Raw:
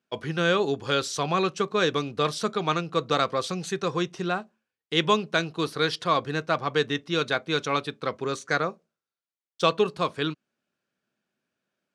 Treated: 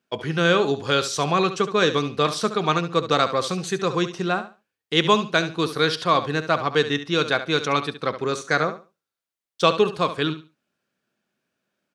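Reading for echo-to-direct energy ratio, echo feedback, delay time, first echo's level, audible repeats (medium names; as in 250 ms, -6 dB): -12.0 dB, 21%, 70 ms, -12.0 dB, 2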